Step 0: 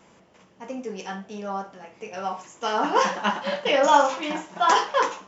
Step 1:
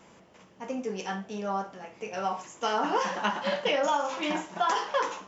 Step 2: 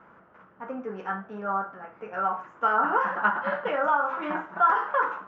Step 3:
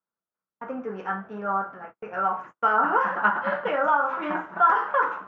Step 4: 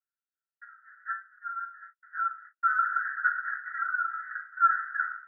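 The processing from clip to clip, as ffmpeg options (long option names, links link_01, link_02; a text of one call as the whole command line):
ffmpeg -i in.wav -af "acompressor=threshold=-23dB:ratio=10" out.wav
ffmpeg -i in.wav -af "lowpass=frequency=1400:width_type=q:width=5.1,volume=-2.5dB" out.wav
ffmpeg -i in.wav -af "agate=range=-43dB:threshold=-43dB:ratio=16:detection=peak,volume=2dB" out.wav
ffmpeg -i in.wav -af "asuperpass=centerf=1600:order=20:qfactor=2.4,volume=-2dB" out.wav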